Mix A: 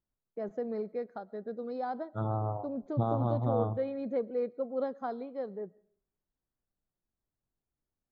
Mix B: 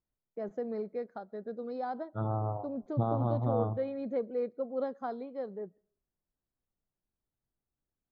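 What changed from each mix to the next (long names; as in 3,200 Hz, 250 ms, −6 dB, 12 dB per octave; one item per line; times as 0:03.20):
first voice: send −8.5 dB
second voice: add high-frequency loss of the air 160 metres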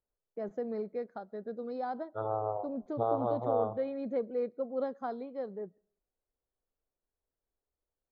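second voice: add low shelf with overshoot 330 Hz −10.5 dB, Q 3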